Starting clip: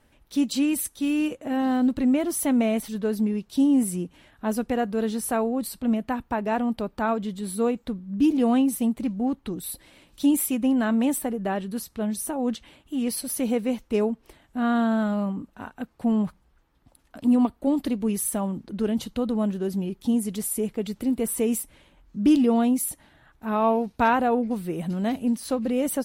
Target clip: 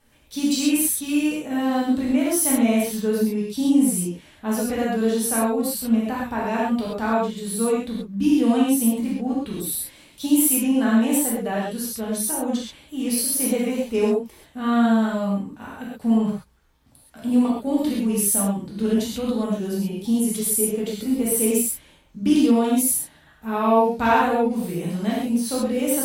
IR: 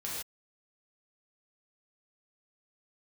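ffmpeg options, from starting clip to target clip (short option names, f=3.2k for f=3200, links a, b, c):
-filter_complex "[0:a]highshelf=f=3k:g=7.5[a];[1:a]atrim=start_sample=2205,afade=t=out:st=0.19:d=0.01,atrim=end_sample=8820[b];[a][b]afir=irnorm=-1:irlink=0"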